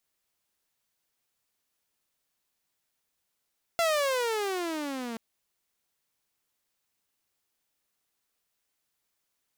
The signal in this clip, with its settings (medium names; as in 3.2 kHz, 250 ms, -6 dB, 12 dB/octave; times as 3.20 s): gliding synth tone saw, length 1.38 s, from 687 Hz, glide -19.5 st, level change -11.5 dB, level -20 dB